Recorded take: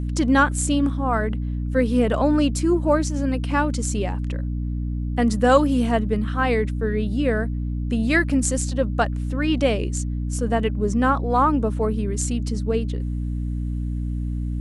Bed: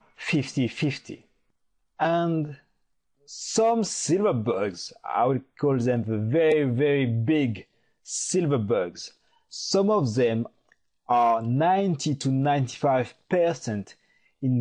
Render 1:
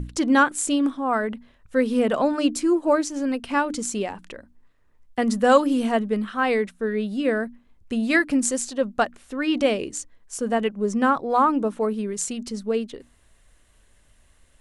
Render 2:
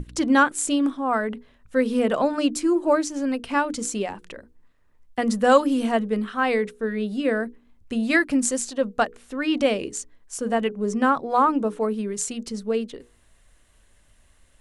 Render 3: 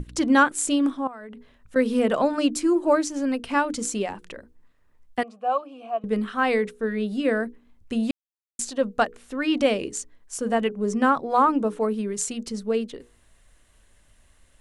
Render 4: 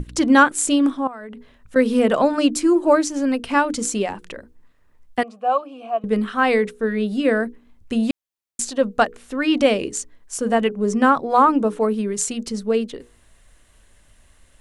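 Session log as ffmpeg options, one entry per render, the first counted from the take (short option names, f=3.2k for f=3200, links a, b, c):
-af "bandreject=f=60:t=h:w=6,bandreject=f=120:t=h:w=6,bandreject=f=180:t=h:w=6,bandreject=f=240:t=h:w=6,bandreject=f=300:t=h:w=6"
-af "bandreject=f=60:t=h:w=6,bandreject=f=120:t=h:w=6,bandreject=f=180:t=h:w=6,bandreject=f=240:t=h:w=6,bandreject=f=300:t=h:w=6,bandreject=f=360:t=h:w=6,bandreject=f=420:t=h:w=6,bandreject=f=480:t=h:w=6"
-filter_complex "[0:a]asettb=1/sr,asplit=3[a][b][c];[a]atrim=end=1.074[d];[b]atrim=start=1.07:end=1.76,asetpts=PTS-STARTPTS,afade=t=in:d=0.004:c=qsin,afade=t=out:st=0.686:d=0.004:c=qsin,acompressor=threshold=-38dB:ratio=6:attack=3.2:release=140:knee=1:detection=peak[e];[c]atrim=start=1.756[f];[d][e]acrossfade=d=0.004:c1=hsin:c2=qsin[g];[g][f]acrossfade=d=0.004:c1=qsin:c2=hsin,asettb=1/sr,asplit=3[h][i][j];[h]atrim=end=5.234[k];[i]atrim=start=5.23:end=6.04,asetpts=PTS-STARTPTS,afade=t=in:d=0.004:c=qsin,afade=t=out:st=0.806:d=0.004:c=qsin,asplit=3[l][m][n];[l]bandpass=f=730:t=q:w=8,volume=0dB[o];[m]bandpass=f=1.09k:t=q:w=8,volume=-6dB[p];[n]bandpass=f=2.44k:t=q:w=8,volume=-9dB[q];[o][p][q]amix=inputs=3:normalize=0[r];[j]atrim=start=6.036[s];[k][r]acrossfade=d=0.004:c1=hsin:c2=qsin[t];[t][s]acrossfade=d=0.004:c1=qsin:c2=hsin,asplit=3[u][v][w];[u]atrim=end=8.11,asetpts=PTS-STARTPTS,afade=t=out:st=8.106:d=0.004:c=hsin[x];[v]atrim=start=8.11:end=8.59,asetpts=PTS-STARTPTS,volume=0[y];[w]atrim=start=8.59,asetpts=PTS-STARTPTS,afade=t=in:d=0.004:c=hsin[z];[x][y][z]concat=n=3:v=0:a=1"
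-af "volume=4.5dB"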